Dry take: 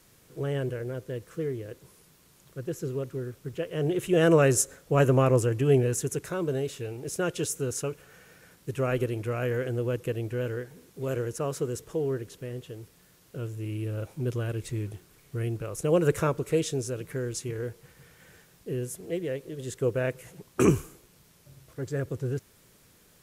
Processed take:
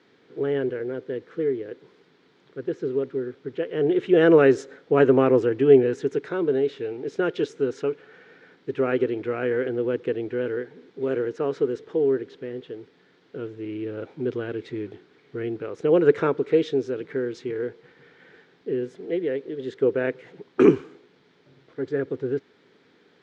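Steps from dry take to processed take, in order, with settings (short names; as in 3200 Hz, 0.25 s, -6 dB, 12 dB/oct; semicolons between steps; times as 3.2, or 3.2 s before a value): speaker cabinet 270–3600 Hz, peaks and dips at 270 Hz +5 dB, 420 Hz +5 dB, 600 Hz -7 dB, 1100 Hz -6 dB, 2700 Hz -7 dB; gain +5.5 dB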